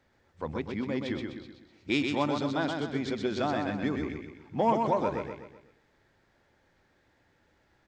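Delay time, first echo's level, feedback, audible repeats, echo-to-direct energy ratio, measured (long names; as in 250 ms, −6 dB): 126 ms, −4.5 dB, 44%, 5, −3.5 dB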